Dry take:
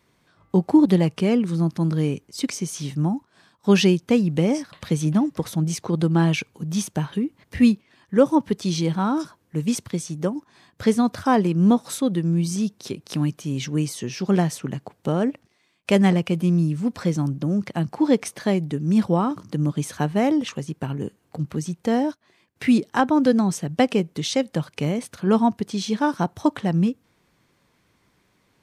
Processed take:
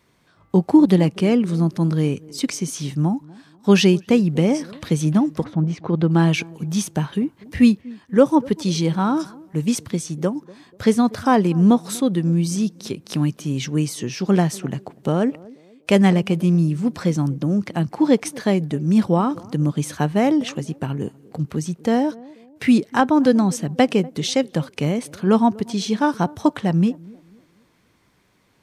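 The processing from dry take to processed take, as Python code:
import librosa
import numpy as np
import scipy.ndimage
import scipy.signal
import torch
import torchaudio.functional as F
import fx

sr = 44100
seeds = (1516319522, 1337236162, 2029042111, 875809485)

y = fx.lowpass(x, sr, hz=fx.line((5.43, 1600.0), (6.09, 3200.0)), slope=12, at=(5.43, 6.09), fade=0.02)
y = fx.echo_banded(y, sr, ms=243, feedback_pct=42, hz=370.0, wet_db=-20.5)
y = y * librosa.db_to_amplitude(2.5)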